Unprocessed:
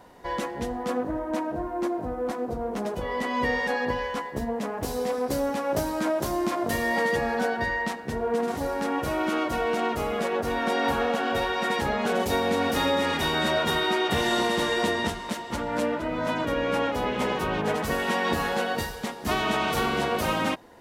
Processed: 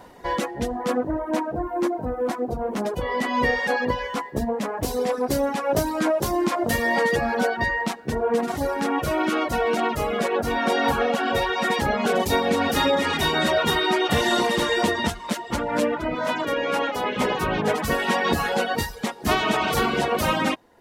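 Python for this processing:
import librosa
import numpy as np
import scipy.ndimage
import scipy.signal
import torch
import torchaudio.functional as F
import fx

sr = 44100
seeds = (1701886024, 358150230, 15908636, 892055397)

y = fx.dereverb_blind(x, sr, rt60_s=0.85)
y = fx.highpass(y, sr, hz=350.0, slope=6, at=(16.15, 17.17))
y = y * 10.0 ** (5.5 / 20.0)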